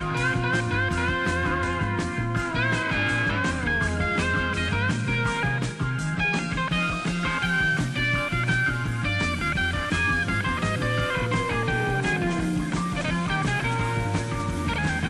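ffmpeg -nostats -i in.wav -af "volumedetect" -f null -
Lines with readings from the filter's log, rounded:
mean_volume: -25.0 dB
max_volume: -11.8 dB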